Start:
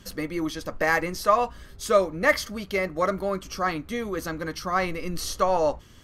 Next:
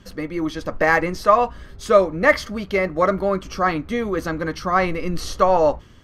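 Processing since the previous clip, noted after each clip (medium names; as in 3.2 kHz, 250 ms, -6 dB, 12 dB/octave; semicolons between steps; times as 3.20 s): low-pass 2.6 kHz 6 dB/octave; level rider gain up to 4.5 dB; trim +2.5 dB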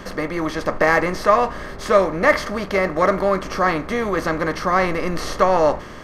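spectral levelling over time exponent 0.6; trim -2.5 dB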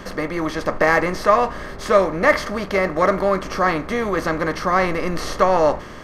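no audible change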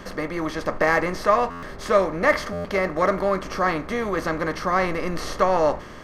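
buffer glitch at 1.50/2.52 s, samples 512, times 10; trim -3.5 dB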